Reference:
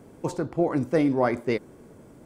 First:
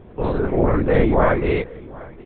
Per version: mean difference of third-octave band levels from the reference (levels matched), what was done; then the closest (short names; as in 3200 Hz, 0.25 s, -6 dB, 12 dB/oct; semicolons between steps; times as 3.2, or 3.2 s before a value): 7.0 dB: spectral dilation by 0.12 s; on a send: echo 0.761 s -21.5 dB; on the sum: LPC vocoder at 8 kHz whisper; gain +2 dB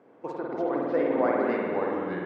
10.0 dB: echoes that change speed 0.214 s, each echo -4 st, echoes 2; BPF 380–2200 Hz; spring tank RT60 2.2 s, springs 50 ms, chirp 25 ms, DRR -2.5 dB; gain -4 dB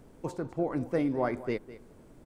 1.5 dB: added noise brown -50 dBFS; echo 0.203 s -16.5 dB; dynamic EQ 6100 Hz, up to -4 dB, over -52 dBFS, Q 0.78; gain -6.5 dB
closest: third